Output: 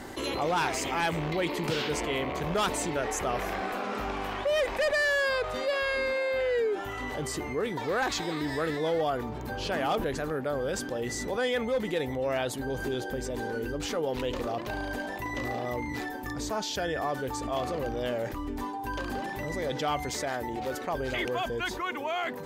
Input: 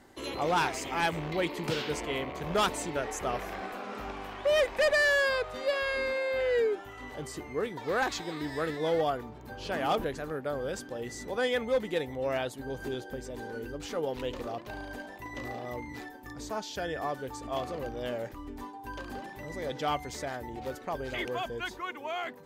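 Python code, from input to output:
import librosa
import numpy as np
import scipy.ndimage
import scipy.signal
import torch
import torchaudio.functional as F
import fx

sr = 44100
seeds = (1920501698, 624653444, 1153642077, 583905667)

y = fx.low_shelf(x, sr, hz=120.0, db=-9.0, at=(20.09, 20.89))
y = fx.env_flatten(y, sr, amount_pct=50)
y = F.gain(torch.from_numpy(y), -2.0).numpy()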